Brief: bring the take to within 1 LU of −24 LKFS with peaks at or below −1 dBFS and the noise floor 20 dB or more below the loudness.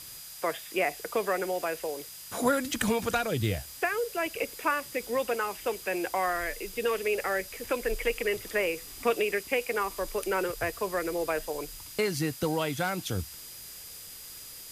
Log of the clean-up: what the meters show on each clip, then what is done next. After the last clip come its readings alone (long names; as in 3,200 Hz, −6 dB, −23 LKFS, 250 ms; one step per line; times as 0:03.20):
interfering tone 4,900 Hz; level of the tone −51 dBFS; background noise floor −45 dBFS; target noise floor −51 dBFS; integrated loudness −30.5 LKFS; sample peak −12.5 dBFS; target loudness −24.0 LKFS
→ notch filter 4,900 Hz, Q 30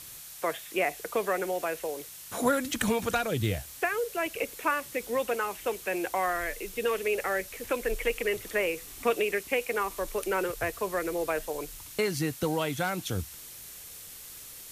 interfering tone none found; background noise floor −46 dBFS; target noise floor −51 dBFS
→ noise reduction from a noise print 6 dB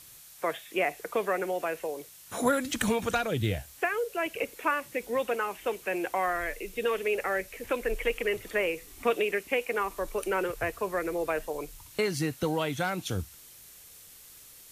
background noise floor −52 dBFS; integrated loudness −30.5 LKFS; sample peak −12.5 dBFS; target loudness −24.0 LKFS
→ level +6.5 dB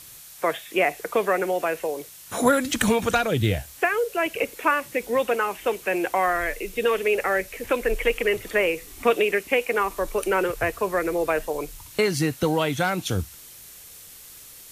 integrated loudness −24.0 LKFS; sample peak −6.0 dBFS; background noise floor −45 dBFS